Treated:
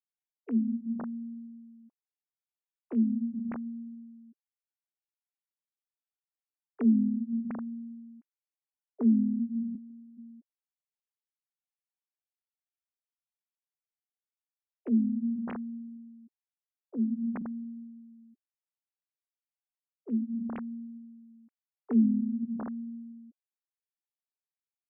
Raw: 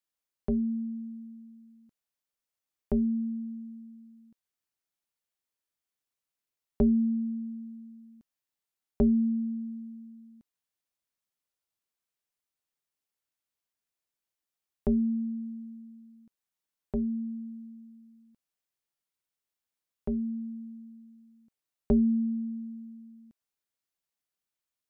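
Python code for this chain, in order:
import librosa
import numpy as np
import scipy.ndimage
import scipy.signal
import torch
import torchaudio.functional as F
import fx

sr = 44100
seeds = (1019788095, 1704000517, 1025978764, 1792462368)

y = fx.sine_speech(x, sr)
y = fx.highpass(y, sr, hz=300.0, slope=24, at=(9.76, 10.17), fade=0.02)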